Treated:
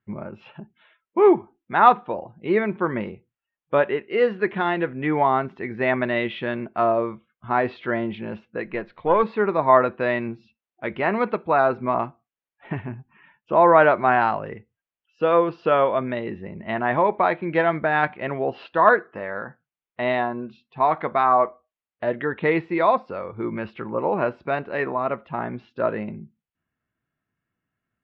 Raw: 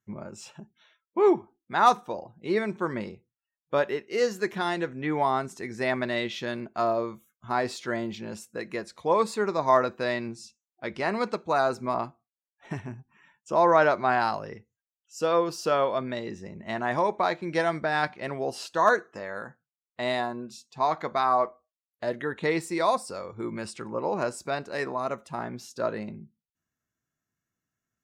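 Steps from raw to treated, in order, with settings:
0:08.65–0:09.23: gain on one half-wave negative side −3 dB
Butterworth low-pass 3,100 Hz 36 dB per octave
level +5.5 dB

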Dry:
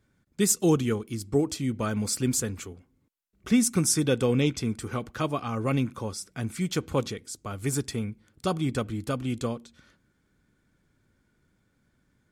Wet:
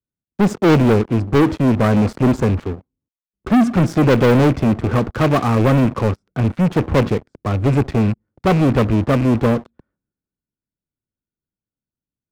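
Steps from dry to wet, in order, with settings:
loose part that buzzes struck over −33 dBFS, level −28 dBFS
low-pass filter 1,000 Hz 12 dB per octave
leveller curve on the samples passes 5
multiband upward and downward expander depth 40%
level +2.5 dB

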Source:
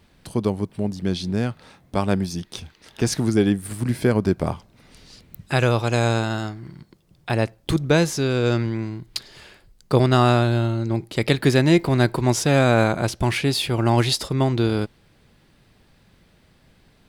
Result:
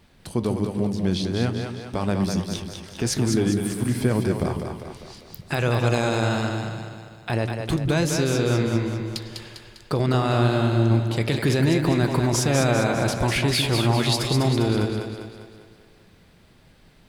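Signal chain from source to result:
brickwall limiter −14 dBFS, peak gain reduction 10 dB
flanger 1.2 Hz, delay 5.4 ms, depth 9.4 ms, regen −76%
echo with a time of its own for lows and highs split 350 Hz, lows 148 ms, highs 200 ms, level −5 dB
level +5 dB

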